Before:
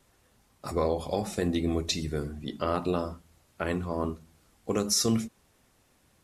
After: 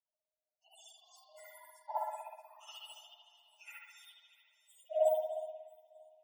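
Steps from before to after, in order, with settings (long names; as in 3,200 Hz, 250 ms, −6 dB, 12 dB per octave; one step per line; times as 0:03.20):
frequency axis turned over on the octave scale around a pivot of 1,900 Hz
gate on every frequency bin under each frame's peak −10 dB strong
on a send: delay that swaps between a low-pass and a high-pass 314 ms, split 1,000 Hz, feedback 57%, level −10 dB
on the sum: dynamic equaliser 1,400 Hz, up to +7 dB, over −59 dBFS, Q 4.6
Chebyshev high-pass with heavy ripple 600 Hz, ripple 9 dB
spring reverb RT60 1.6 s, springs 59 ms, chirp 30 ms, DRR −9 dB
expander for the loud parts 1.5 to 1, over −43 dBFS
level −6 dB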